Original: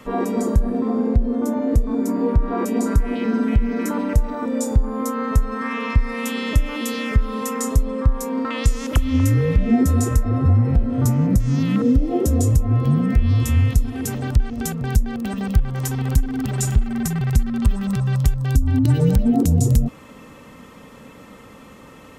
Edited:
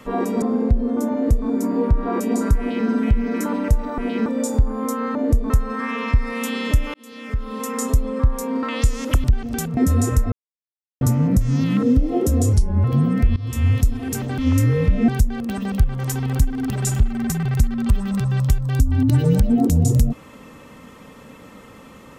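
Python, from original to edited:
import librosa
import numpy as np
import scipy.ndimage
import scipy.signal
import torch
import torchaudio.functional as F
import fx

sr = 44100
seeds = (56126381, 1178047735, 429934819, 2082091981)

y = fx.edit(x, sr, fx.cut(start_s=0.42, length_s=0.45),
    fx.duplicate(start_s=1.58, length_s=0.35, to_s=5.32),
    fx.duplicate(start_s=3.04, length_s=0.28, to_s=4.43),
    fx.fade_in_span(start_s=6.76, length_s=0.9),
    fx.swap(start_s=9.06, length_s=0.7, other_s=14.31, other_length_s=0.53),
    fx.silence(start_s=10.31, length_s=0.69),
    fx.speed_span(start_s=12.52, length_s=0.25, speed=0.8),
    fx.fade_in_from(start_s=13.29, length_s=0.34, floor_db=-20.0), tone=tone)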